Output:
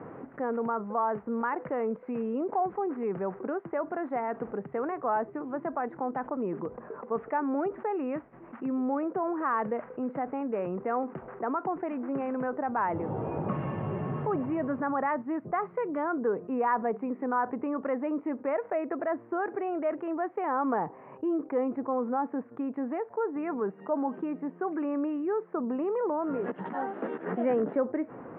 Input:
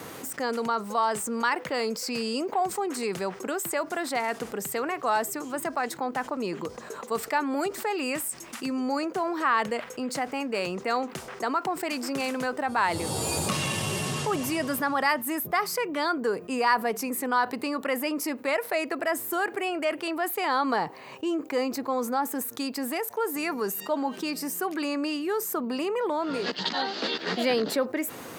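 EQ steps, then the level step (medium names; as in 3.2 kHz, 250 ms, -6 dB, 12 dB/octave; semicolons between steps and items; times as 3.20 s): Gaussian low-pass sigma 5.8 samples; distance through air 150 m; peaking EQ 83 Hz -14 dB 0.2 oct; 0.0 dB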